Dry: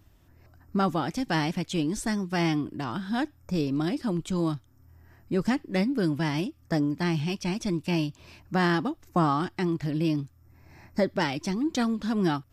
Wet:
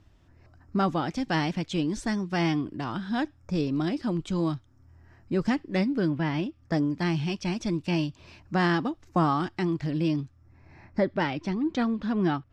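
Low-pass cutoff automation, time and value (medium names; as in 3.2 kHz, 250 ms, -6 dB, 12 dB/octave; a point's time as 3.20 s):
5.90 s 5.9 kHz
6.19 s 2.6 kHz
6.88 s 6.3 kHz
9.98 s 6.3 kHz
11.00 s 3.1 kHz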